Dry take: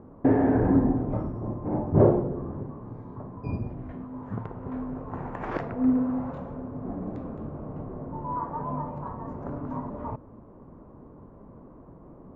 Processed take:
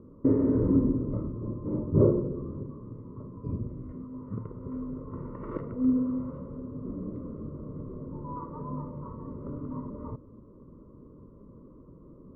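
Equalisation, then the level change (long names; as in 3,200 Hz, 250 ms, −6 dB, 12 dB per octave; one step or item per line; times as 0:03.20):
Savitzky-Golay smoothing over 65 samples
Butterworth band-reject 760 Hz, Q 1.5
−2.0 dB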